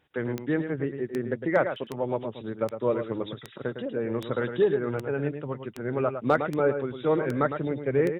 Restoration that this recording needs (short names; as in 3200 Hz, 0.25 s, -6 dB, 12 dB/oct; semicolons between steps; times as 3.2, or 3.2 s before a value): clip repair -11 dBFS; de-click; inverse comb 0.107 s -8.5 dB